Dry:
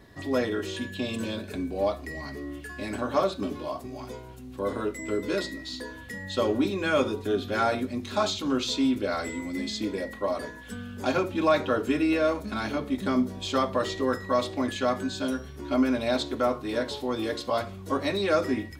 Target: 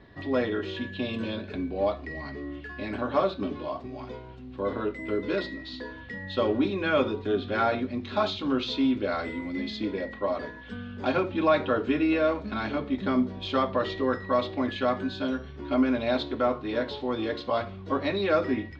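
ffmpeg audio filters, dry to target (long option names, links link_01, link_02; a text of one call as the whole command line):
ffmpeg -i in.wav -af "lowpass=frequency=4000:width=0.5412,lowpass=frequency=4000:width=1.3066" out.wav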